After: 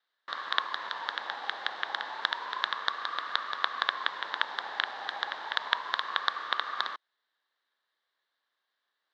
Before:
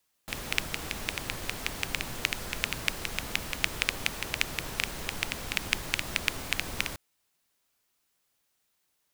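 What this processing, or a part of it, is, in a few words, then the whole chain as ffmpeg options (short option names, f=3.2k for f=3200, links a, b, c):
voice changer toy: -af "aeval=exprs='val(0)*sin(2*PI*1000*n/s+1000*0.2/0.3*sin(2*PI*0.3*n/s))':c=same,highpass=450,equalizer=f=1.1k:t=q:w=4:g=6,equalizer=f=1.7k:t=q:w=4:g=10,equalizer=f=2.5k:t=q:w=4:g=-9,equalizer=f=3.8k:t=q:w=4:g=8,lowpass=f=3.9k:w=0.5412,lowpass=f=3.9k:w=1.3066"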